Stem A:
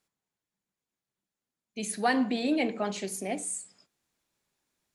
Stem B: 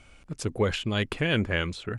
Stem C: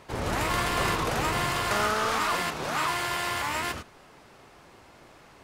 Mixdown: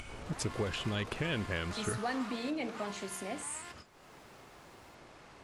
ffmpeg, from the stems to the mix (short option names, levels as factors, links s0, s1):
-filter_complex "[0:a]acompressor=threshold=0.00891:ratio=1.5,volume=0.708[s0];[1:a]acompressor=threshold=0.0178:ratio=4,volume=1.19[s1];[2:a]lowpass=9800,volume=0.119[s2];[s0][s1][s2]amix=inputs=3:normalize=0,acompressor=mode=upward:threshold=0.01:ratio=2.5"